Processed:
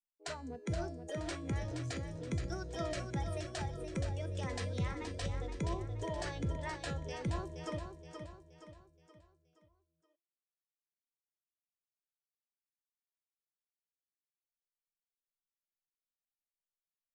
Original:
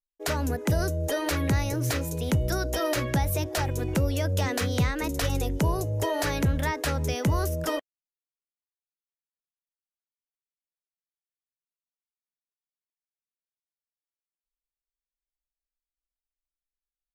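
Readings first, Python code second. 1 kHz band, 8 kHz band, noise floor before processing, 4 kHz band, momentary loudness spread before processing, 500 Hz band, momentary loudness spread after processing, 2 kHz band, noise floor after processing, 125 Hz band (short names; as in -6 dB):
-12.5 dB, -15.5 dB, under -85 dBFS, -13.0 dB, 3 LU, -12.0 dB, 9 LU, -13.5 dB, under -85 dBFS, -12.0 dB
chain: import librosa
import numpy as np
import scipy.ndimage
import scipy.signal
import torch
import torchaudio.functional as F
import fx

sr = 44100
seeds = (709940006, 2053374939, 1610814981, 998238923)

p1 = fx.wiener(x, sr, points=25)
p2 = scipy.signal.sosfilt(scipy.signal.ellip(4, 1.0, 60, 8600.0, 'lowpass', fs=sr, output='sos'), p1)
p3 = fx.comb_fb(p2, sr, f0_hz=340.0, decay_s=0.72, harmonics='all', damping=0.0, mix_pct=80)
p4 = fx.noise_reduce_blind(p3, sr, reduce_db=10)
p5 = p4 + fx.echo_feedback(p4, sr, ms=473, feedback_pct=43, wet_db=-7, dry=0)
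y = p5 * librosa.db_to_amplitude(2.5)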